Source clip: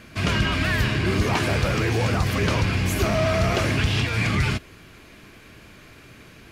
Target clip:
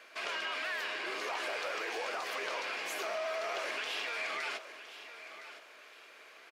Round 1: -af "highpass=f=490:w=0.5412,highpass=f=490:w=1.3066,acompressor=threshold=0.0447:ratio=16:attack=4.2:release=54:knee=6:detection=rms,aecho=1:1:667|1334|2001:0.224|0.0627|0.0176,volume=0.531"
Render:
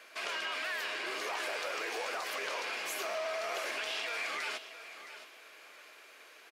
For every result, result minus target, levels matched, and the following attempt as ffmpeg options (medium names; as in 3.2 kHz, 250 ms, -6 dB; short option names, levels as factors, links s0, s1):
echo 346 ms early; 8 kHz band +3.0 dB
-af "highpass=f=490:w=0.5412,highpass=f=490:w=1.3066,acompressor=threshold=0.0447:ratio=16:attack=4.2:release=54:knee=6:detection=rms,aecho=1:1:1013|2026|3039:0.224|0.0627|0.0176,volume=0.531"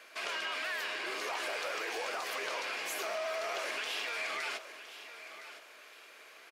8 kHz band +3.5 dB
-af "highpass=f=490:w=0.5412,highpass=f=490:w=1.3066,equalizer=f=13000:t=o:w=1.5:g=-7,acompressor=threshold=0.0447:ratio=16:attack=4.2:release=54:knee=6:detection=rms,aecho=1:1:1013|2026|3039:0.224|0.0627|0.0176,volume=0.531"